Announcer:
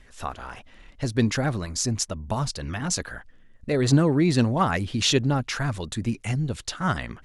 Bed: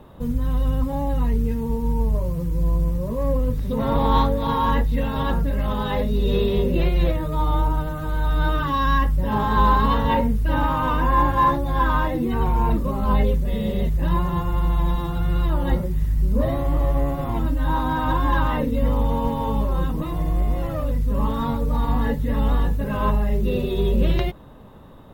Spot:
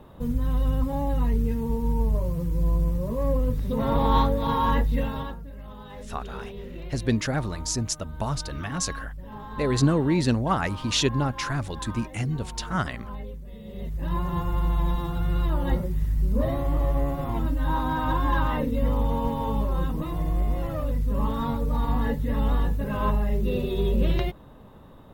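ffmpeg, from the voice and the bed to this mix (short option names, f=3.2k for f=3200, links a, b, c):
-filter_complex "[0:a]adelay=5900,volume=-2dB[a];[1:a]volume=12dB,afade=t=out:st=4.99:d=0.37:silence=0.16788,afade=t=in:st=13.65:d=0.77:silence=0.188365[b];[a][b]amix=inputs=2:normalize=0"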